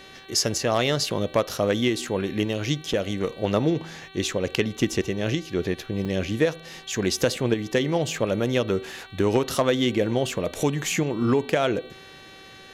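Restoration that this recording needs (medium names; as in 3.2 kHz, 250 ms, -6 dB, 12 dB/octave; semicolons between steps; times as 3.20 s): clip repair -10.5 dBFS; de-hum 384.5 Hz, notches 11; interpolate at 2.93/6.05 s, 4.6 ms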